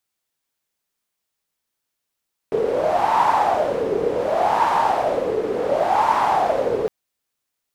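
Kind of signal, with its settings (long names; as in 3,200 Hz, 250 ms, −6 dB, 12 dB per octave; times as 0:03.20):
wind from filtered noise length 4.36 s, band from 430 Hz, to 930 Hz, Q 7.2, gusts 3, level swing 4 dB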